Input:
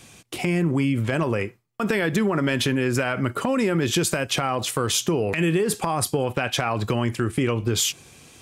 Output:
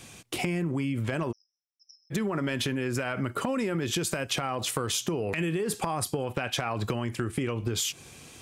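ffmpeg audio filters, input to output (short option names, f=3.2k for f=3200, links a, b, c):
-filter_complex "[0:a]acompressor=threshold=-26dB:ratio=6,asplit=3[a][b][c];[a]afade=t=out:st=1.31:d=0.02[d];[b]asuperpass=centerf=5500:order=12:qfactor=6.7,afade=t=in:st=1.31:d=0.02,afade=t=out:st=2.1:d=0.02[e];[c]afade=t=in:st=2.1:d=0.02[f];[d][e][f]amix=inputs=3:normalize=0"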